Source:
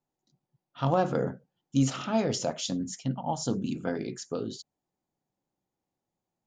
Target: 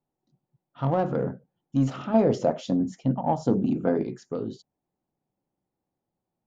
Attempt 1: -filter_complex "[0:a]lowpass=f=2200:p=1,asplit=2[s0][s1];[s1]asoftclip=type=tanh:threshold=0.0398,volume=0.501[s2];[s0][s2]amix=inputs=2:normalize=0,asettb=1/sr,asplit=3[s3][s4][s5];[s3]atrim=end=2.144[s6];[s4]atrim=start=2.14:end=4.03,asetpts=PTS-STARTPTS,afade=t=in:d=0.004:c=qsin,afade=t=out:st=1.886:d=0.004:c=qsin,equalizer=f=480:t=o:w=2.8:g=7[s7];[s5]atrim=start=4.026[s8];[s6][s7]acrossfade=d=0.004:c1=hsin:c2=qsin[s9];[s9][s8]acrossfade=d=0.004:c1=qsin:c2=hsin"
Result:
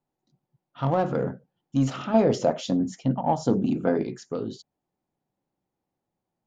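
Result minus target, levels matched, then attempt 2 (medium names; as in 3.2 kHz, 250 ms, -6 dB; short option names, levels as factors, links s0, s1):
2 kHz band +3.0 dB
-filter_complex "[0:a]lowpass=f=970:p=1,asplit=2[s0][s1];[s1]asoftclip=type=tanh:threshold=0.0398,volume=0.501[s2];[s0][s2]amix=inputs=2:normalize=0,asettb=1/sr,asplit=3[s3][s4][s5];[s3]atrim=end=2.144[s6];[s4]atrim=start=2.14:end=4.03,asetpts=PTS-STARTPTS,afade=t=in:d=0.004:c=qsin,afade=t=out:st=1.886:d=0.004:c=qsin,equalizer=f=480:t=o:w=2.8:g=7[s7];[s5]atrim=start=4.026[s8];[s6][s7]acrossfade=d=0.004:c1=hsin:c2=qsin[s9];[s9][s8]acrossfade=d=0.004:c1=qsin:c2=hsin"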